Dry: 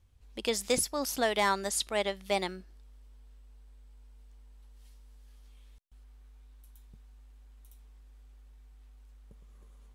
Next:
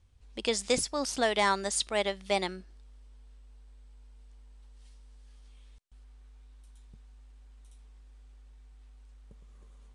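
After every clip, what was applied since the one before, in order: elliptic low-pass 9.5 kHz, stop band 50 dB; trim +2 dB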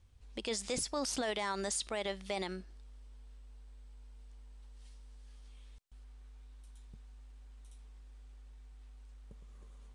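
peak limiter -26.5 dBFS, peak gain reduction 11.5 dB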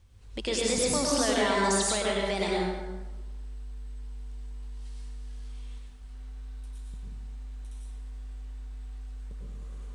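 reverberation RT60 1.2 s, pre-delay 88 ms, DRR -3.5 dB; trim +5 dB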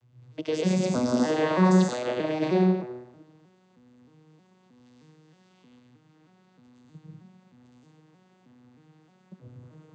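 vocoder on a broken chord major triad, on B2, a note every 313 ms; de-hum 127.1 Hz, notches 7; trim +5 dB

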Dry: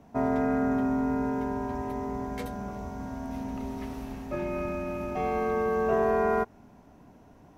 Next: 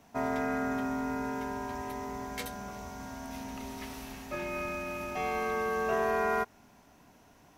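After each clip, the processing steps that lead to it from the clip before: tilt shelf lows -8 dB, about 1.2 kHz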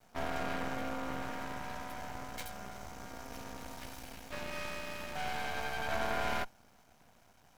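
comb filter that takes the minimum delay 1.3 ms; half-wave rectifier; trim +1 dB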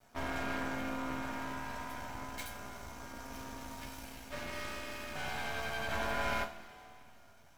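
two-slope reverb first 0.24 s, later 2.7 s, from -19 dB, DRR 1.5 dB; trim -2 dB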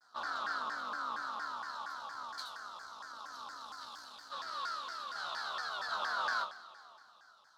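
two resonant band-passes 2.3 kHz, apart 1.7 oct; vibrato with a chosen wave saw down 4.3 Hz, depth 250 cents; trim +11 dB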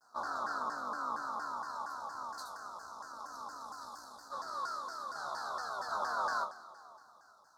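Butterworth band-stop 2.7 kHz, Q 0.55; trim +5 dB

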